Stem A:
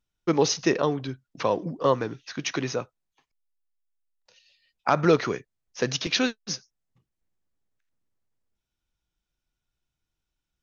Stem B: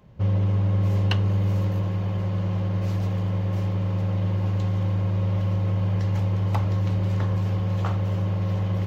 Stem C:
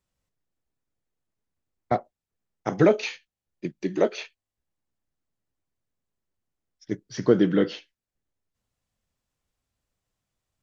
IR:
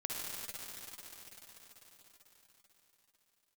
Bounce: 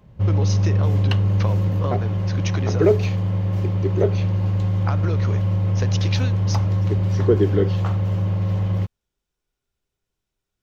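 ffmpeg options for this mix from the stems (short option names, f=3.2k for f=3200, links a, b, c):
-filter_complex "[0:a]acompressor=threshold=-26dB:ratio=6,volume=-0.5dB[a];[1:a]lowshelf=f=160:g=5,volume=0dB[b];[2:a]equalizer=f=400:w=4.8:g=13.5,volume=-4.5dB[c];[a][b][c]amix=inputs=3:normalize=0"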